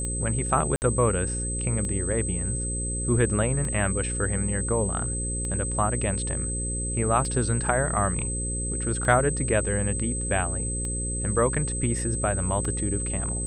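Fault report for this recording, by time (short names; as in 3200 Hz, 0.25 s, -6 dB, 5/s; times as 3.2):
buzz 60 Hz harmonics 9 -31 dBFS
tick 33 1/3 rpm -20 dBFS
tone 8200 Hz -30 dBFS
0.76–0.82 gap 59 ms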